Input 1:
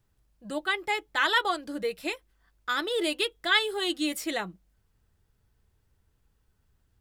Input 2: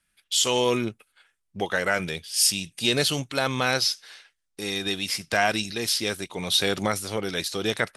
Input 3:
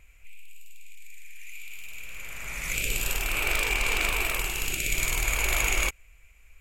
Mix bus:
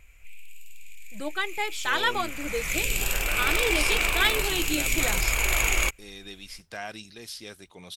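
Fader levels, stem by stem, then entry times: -1.0, -14.5, +1.5 dB; 0.70, 1.40, 0.00 s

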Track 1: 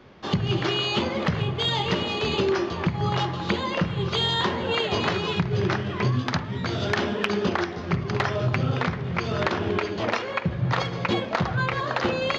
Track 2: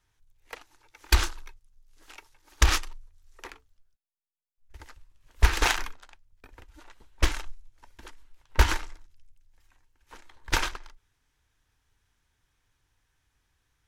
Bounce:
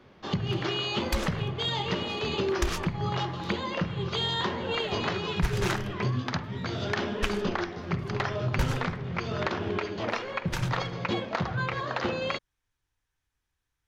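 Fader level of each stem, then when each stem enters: -5.0, -9.0 dB; 0.00, 0.00 s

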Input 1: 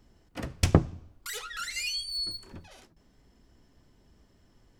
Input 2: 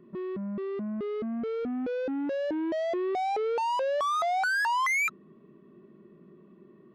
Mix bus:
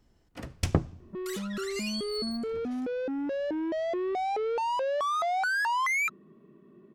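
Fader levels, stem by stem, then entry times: -4.5, -1.0 dB; 0.00, 1.00 s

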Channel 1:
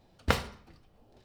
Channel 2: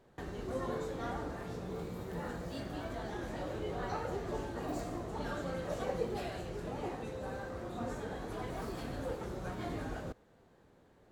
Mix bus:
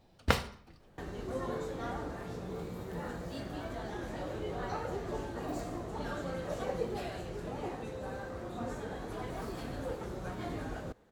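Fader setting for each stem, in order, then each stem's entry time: -1.0, +0.5 dB; 0.00, 0.80 s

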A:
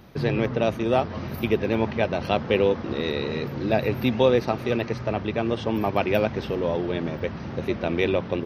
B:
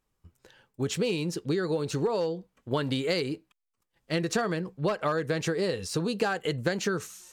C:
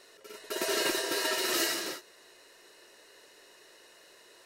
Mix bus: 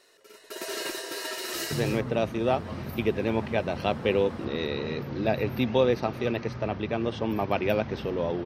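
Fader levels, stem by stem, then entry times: -3.5 dB, off, -4.0 dB; 1.55 s, off, 0.00 s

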